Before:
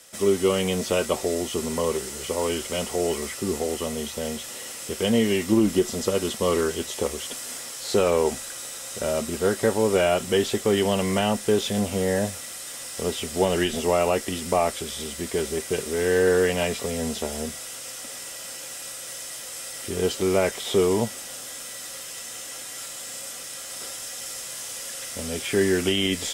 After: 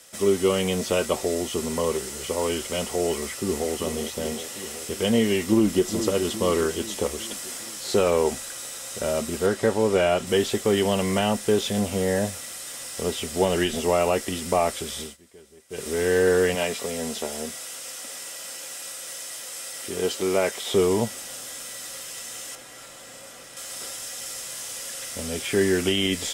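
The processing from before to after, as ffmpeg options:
-filter_complex "[0:a]asplit=2[a][b];[b]afade=t=in:st=3.11:d=0.01,afade=t=out:st=3.71:d=0.01,aecho=0:1:380|760|1140|1520|1900|2280|2660|3040|3420|3800|4180|4560:0.334965|0.251224|0.188418|0.141314|0.105985|0.0794889|0.0596167|0.0447125|0.0335344|0.0251508|0.0188631|0.0141473[c];[a][c]amix=inputs=2:normalize=0,asplit=2[d][e];[e]afade=t=in:st=5.46:d=0.01,afade=t=out:st=5.93:d=0.01,aecho=0:1:420|840|1260|1680|2100|2520:0.334965|0.184231|0.101327|0.0557299|0.0306514|0.0168583[f];[d][f]amix=inputs=2:normalize=0,asettb=1/sr,asplit=3[g][h][i];[g]atrim=end=9.464[j];[h]atrim=start=9.46:end=10.27,asetpts=PTS-STARTPTS,afade=t=in:d=0.004:c=qsin,afade=t=out:st=0.806:d=0.004:c=qsin,highshelf=f=8.9k:g=-9.5[k];[i]atrim=start=10.266[l];[j][k]acrossfade=d=0.004:c1=hsin:c2=qsin[m];[m][l]acrossfade=d=0.004:c1=qsin:c2=hsin,asettb=1/sr,asplit=3[n][o][p];[n]atrim=end=16.554[q];[o]atrim=start=16.55:end=20.74,asetpts=PTS-STARTPTS,afade=t=in:d=0.004:c=qsin,afade=t=out:st=4.186:d=0.004:c=qsin,highpass=f=250:p=1[r];[p]atrim=start=20.736[s];[q][r]acrossfade=d=0.004:c1=hsin:c2=qsin[t];[t][s]acrossfade=d=0.004:c1=qsin:c2=hsin,asettb=1/sr,asplit=3[u][v][w];[u]atrim=end=22.554[x];[v]atrim=start=22.55:end=23.57,asetpts=PTS-STARTPTS,afade=t=in:d=0.004:c=qsin,afade=t=out:st=1.016:d=0.004:c=qsin,highshelf=f=2.8k:g=-10.5[y];[w]atrim=start=23.566[z];[x][y]acrossfade=d=0.004:c1=hsin:c2=qsin[aa];[aa][z]acrossfade=d=0.004:c1=qsin:c2=hsin,asplit=3[ab][ac][ad];[ab]atrim=end=15.17,asetpts=PTS-STARTPTS,afade=t=out:st=14.99:d=0.18:silence=0.0668344[ae];[ac]atrim=start=15.17:end=15.69,asetpts=PTS-STARTPTS,volume=-23.5dB[af];[ad]atrim=start=15.69,asetpts=PTS-STARTPTS,afade=t=in:d=0.18:silence=0.0668344[ag];[ae][af][ag]concat=n=3:v=0:a=1"

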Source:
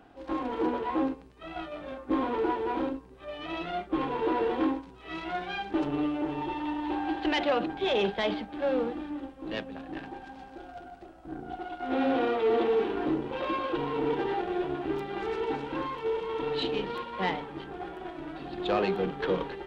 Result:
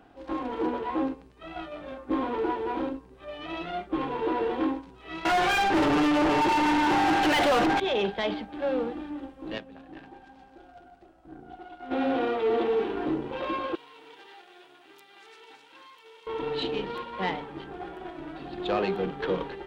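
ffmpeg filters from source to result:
-filter_complex "[0:a]asettb=1/sr,asplit=3[a][b][c];[a]atrim=end=5.254[d];[b]atrim=start=5.25:end=7.8,asetpts=PTS-STARTPTS,afade=t=in:d=0.004:c=qsin,afade=t=out:st=2.546:d=0.004:c=qsin,asplit=2[e][f];[f]highpass=f=720:p=1,volume=35dB,asoftclip=type=tanh:threshold=-16dB[g];[e][g]amix=inputs=2:normalize=0,lowpass=f=2.5k:p=1,volume=-6dB[h];[c]atrim=start=7.796[i];[d][h]acrossfade=d=0.004:c1=hsin:c2=qsin[j];[j][i]acrossfade=d=0.004:c1=qsin:c2=hsin,asettb=1/sr,asplit=3[k][l][m];[k]atrim=end=13.754[n];[l]atrim=start=13.75:end=16.27,asetpts=PTS-STARTPTS,afade=t=in:d=0.004:c=qsin,afade=t=out:st=2.516:d=0.004:c=qsin,aderivative[o];[m]atrim=start=16.266[p];[n][o]acrossfade=d=0.004:c1=hsin:c2=qsin[q];[q][p]acrossfade=d=0.004:c1=qsin:c2=hsin,asplit=3[r][s][t];[r]atrim=end=9.582[u];[s]atrim=start=9.578:end=11.912,asetpts=PTS-STARTPTS,volume=-6.5dB[v];[t]atrim=start=11.908[w];[u][v]acrossfade=d=0.004:c1=hsin:c2=hsin[x];[x][w]acrossfade=d=0.004:c1=hsin:c2=hsin"

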